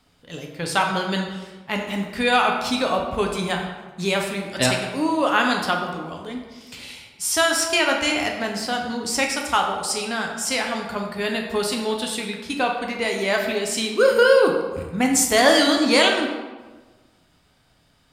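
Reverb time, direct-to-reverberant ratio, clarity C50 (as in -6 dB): 1.3 s, 1.0 dB, 4.5 dB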